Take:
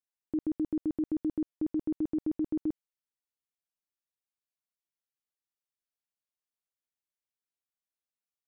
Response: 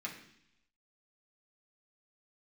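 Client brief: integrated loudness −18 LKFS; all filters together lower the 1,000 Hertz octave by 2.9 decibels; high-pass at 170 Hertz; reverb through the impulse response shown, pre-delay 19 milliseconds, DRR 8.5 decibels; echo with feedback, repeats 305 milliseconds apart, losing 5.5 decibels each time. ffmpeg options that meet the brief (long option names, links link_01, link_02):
-filter_complex "[0:a]highpass=170,equalizer=frequency=1000:width_type=o:gain=-4,aecho=1:1:305|610|915|1220|1525|1830|2135:0.531|0.281|0.149|0.079|0.0419|0.0222|0.0118,asplit=2[link_01][link_02];[1:a]atrim=start_sample=2205,adelay=19[link_03];[link_02][link_03]afir=irnorm=-1:irlink=0,volume=-9dB[link_04];[link_01][link_04]amix=inputs=2:normalize=0,volume=15.5dB"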